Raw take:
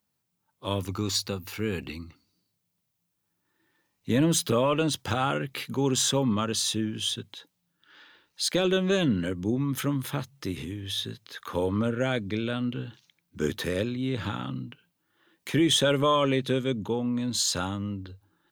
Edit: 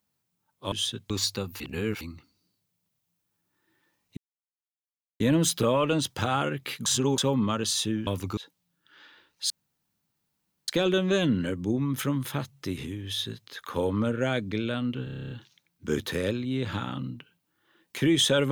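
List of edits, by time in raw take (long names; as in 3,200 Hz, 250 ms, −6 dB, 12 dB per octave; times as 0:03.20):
0:00.72–0:01.02: swap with 0:06.96–0:07.34
0:01.52–0:01.93: reverse
0:04.09: splice in silence 1.03 s
0:05.75–0:06.07: reverse
0:08.47: splice in room tone 1.18 s
0:12.83: stutter 0.03 s, 10 plays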